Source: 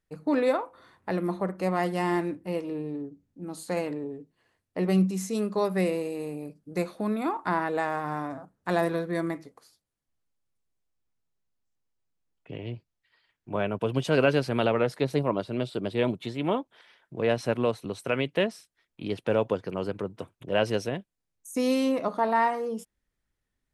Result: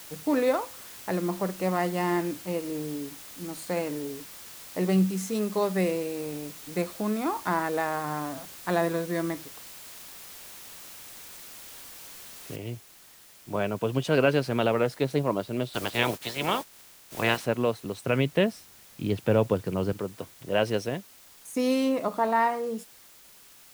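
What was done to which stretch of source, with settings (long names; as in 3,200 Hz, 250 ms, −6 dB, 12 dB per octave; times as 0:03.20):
0:12.56: noise floor change −45 dB −53 dB
0:15.73–0:17.44: ceiling on every frequency bin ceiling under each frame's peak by 20 dB
0:18.04–0:19.93: parametric band 90 Hz +9 dB 2.7 octaves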